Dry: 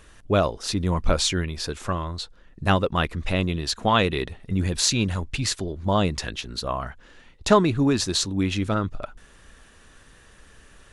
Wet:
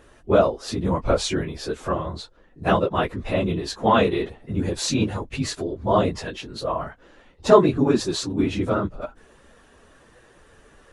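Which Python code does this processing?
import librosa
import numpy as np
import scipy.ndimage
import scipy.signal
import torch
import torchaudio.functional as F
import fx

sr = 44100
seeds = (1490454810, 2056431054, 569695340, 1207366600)

y = fx.phase_scramble(x, sr, seeds[0], window_ms=50)
y = fx.peak_eq(y, sr, hz=490.0, db=11.0, octaves=2.8)
y = F.gain(torch.from_numpy(y), -5.5).numpy()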